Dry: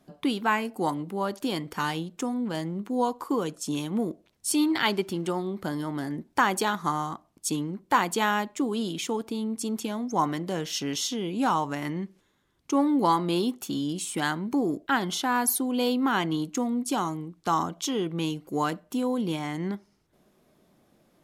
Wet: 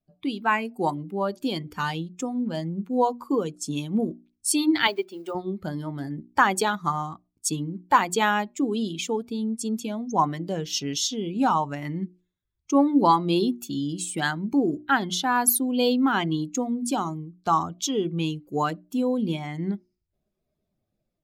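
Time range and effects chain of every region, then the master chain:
4.87–5.35 s: block-companded coder 5-bit + high-pass 400 Hz + treble shelf 3.2 kHz -7 dB
whole clip: expander on every frequency bin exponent 1.5; hum notches 60/120/180/240/300/360 Hz; level rider gain up to 6 dB

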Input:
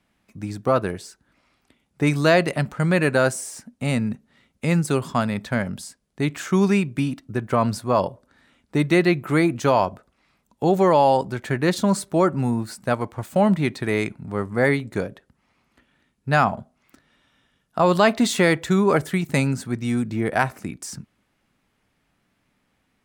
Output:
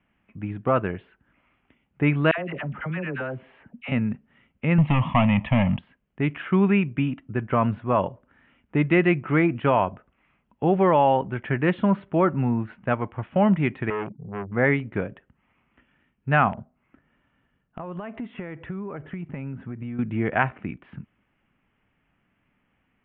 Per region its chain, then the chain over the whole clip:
2.31–3.92 s: phase dispersion lows, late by 71 ms, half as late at 920 Hz + compression 3:1, threshold -28 dBFS
4.78–5.79 s: waveshaping leveller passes 3 + static phaser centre 1.5 kHz, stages 6
13.90–14.52 s: spectral contrast enhancement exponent 2.7 + transformer saturation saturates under 1 kHz
16.53–19.99 s: compression 12:1, threshold -27 dBFS + integer overflow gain 18 dB + tape spacing loss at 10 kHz 30 dB
whole clip: steep low-pass 3.1 kHz 72 dB/octave; peaking EQ 530 Hz -3 dB 1.7 oct

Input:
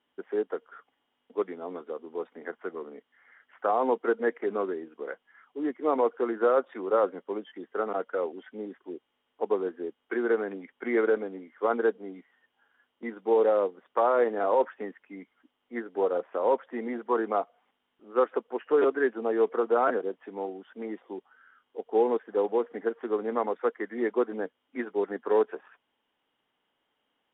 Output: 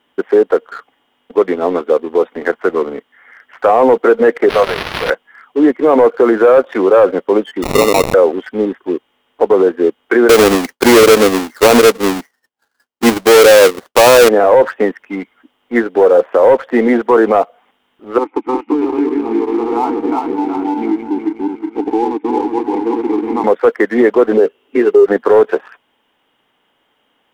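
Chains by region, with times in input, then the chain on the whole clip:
4.49–5.10 s: zero-crossing glitches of -25.5 dBFS + steep high-pass 490 Hz 48 dB/octave + decimation joined by straight lines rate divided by 6×
7.62–8.14 s: zero-crossing glitches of -29.5 dBFS + sample-rate reducer 1.6 kHz
10.29–14.29 s: square wave that keeps the level + expander -54 dBFS
18.18–23.44 s: backward echo that repeats 183 ms, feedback 58%, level -1.5 dB + vowel filter u + three bands compressed up and down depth 100%
24.37–25.06 s: compression 4:1, threshold -37 dBFS + small resonant body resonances 400/2700 Hz, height 18 dB, ringing for 60 ms
whole clip: dynamic bell 530 Hz, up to +5 dB, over -39 dBFS, Q 2.8; waveshaping leveller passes 1; loudness maximiser +19 dB; trim -1 dB

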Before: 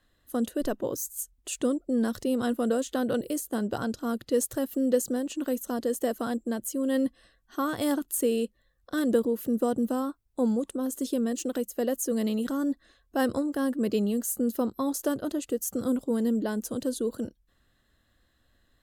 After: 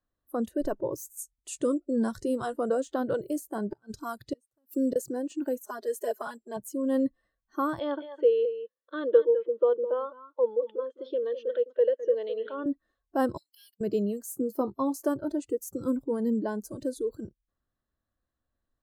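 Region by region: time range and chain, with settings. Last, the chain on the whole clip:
1.17–2.59 s: low-pass 9.6 kHz + treble shelf 5.9 kHz +9.5 dB + doubling 14 ms -14 dB
3.70–4.96 s: treble shelf 2.9 kHz +7.5 dB + inverted gate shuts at -17 dBFS, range -32 dB
5.64–6.57 s: high-pass 500 Hz 6 dB/octave + comb 4.8 ms, depth 92%
7.79–12.66 s: cabinet simulation 460–3600 Hz, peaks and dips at 480 Hz +9 dB, 750 Hz -8 dB, 3.3 kHz +7 dB + delay 208 ms -10 dB
13.37–13.81 s: elliptic high-pass 2.5 kHz, stop band 60 dB + peaking EQ 8 kHz -12 dB 0.75 oct + waveshaping leveller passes 2
14.32–15.03 s: high-pass 61 Hz + doubling 15 ms -11.5 dB
whole clip: spectral noise reduction 16 dB; resonant high shelf 1.6 kHz -8.5 dB, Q 1.5

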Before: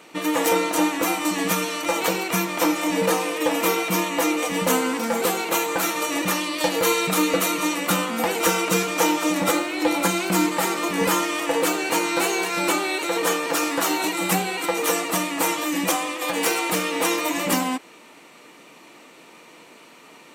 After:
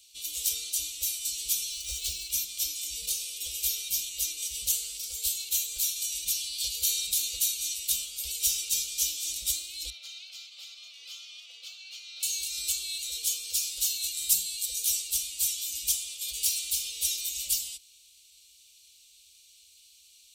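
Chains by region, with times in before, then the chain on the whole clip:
1.71–2.32 s: median filter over 3 samples + bass shelf 190 Hz +9.5 dB
9.90–12.23 s: steep high-pass 630 Hz + distance through air 260 m
14.30–14.85 s: tone controls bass +5 dB, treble +4 dB + static phaser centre 320 Hz, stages 6
whole clip: inverse Chebyshev band-stop 120–1900 Hz, stop band 40 dB; peaking EQ 62 Hz +10 dB 2.5 oct

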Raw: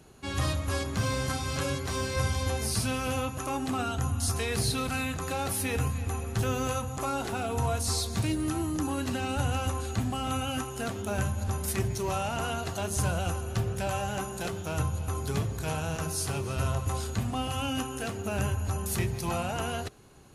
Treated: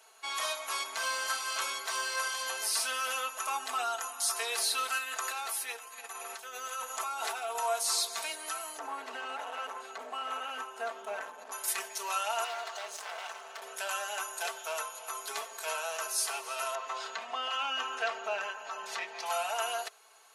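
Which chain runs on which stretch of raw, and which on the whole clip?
4.98–7.55 s: hum notches 60/120/180/240/300/360/420/480/540/600 Hz + compressor with a negative ratio -35 dBFS
8.78–11.52 s: bass shelf 320 Hz +8.5 dB + hard clipper -22.5 dBFS + low-pass 1.4 kHz 6 dB/octave
12.44–13.62 s: low-pass 5 kHz + hard clipper -34 dBFS
16.75–19.26 s: high-pass 42 Hz + distance through air 170 m + level flattener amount 50%
whole clip: high-pass 660 Hz 24 dB/octave; comb 4.5 ms, depth 74%

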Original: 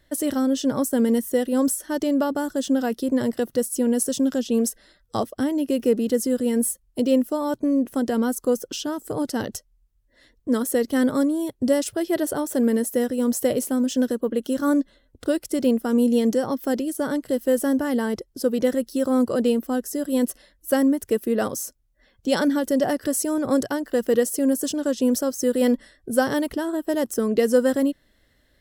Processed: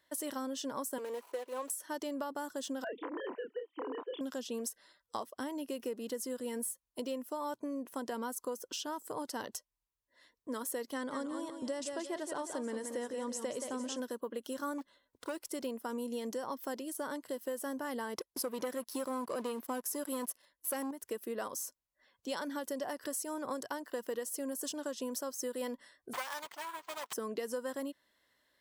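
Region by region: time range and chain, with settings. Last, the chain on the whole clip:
0.98–1.70 s: median filter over 25 samples + high-pass 380 Hz 24 dB/octave
2.84–4.21 s: formants replaced by sine waves + compression 3:1, threshold -25 dBFS + doubling 30 ms -5 dB
10.93–14.00 s: low-pass 8.9 kHz 24 dB/octave + modulated delay 176 ms, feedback 34%, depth 90 cents, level -8.5 dB
14.78–15.50 s: block-companded coder 7-bit + hard clipper -18.5 dBFS
18.16–20.91 s: peaking EQ 11 kHz +6 dB 0.31 oct + waveshaping leveller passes 2
26.13–27.13 s: comb filter that takes the minimum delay 3.5 ms + high-pass 1 kHz + careless resampling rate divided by 4×, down none, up hold
whole clip: high-pass 680 Hz 6 dB/octave; peaking EQ 1 kHz +11 dB 0.27 oct; compression, threshold -27 dBFS; trim -7.5 dB

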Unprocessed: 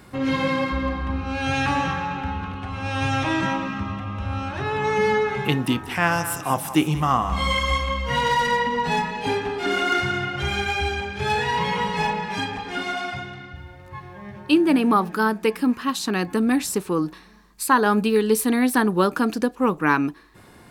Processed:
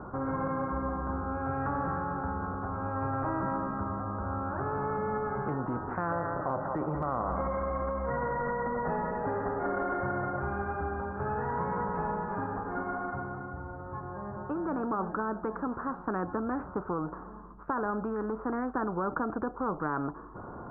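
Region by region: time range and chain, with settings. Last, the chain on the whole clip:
6.12–10.39 s: small resonant body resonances 570/1900/3500 Hz, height 17 dB, ringing for 40 ms + delay 299 ms -20.5 dB
whole clip: Chebyshev low-pass 1.4 kHz, order 6; peak limiter -16 dBFS; spectrum-flattening compressor 2:1; trim -2 dB

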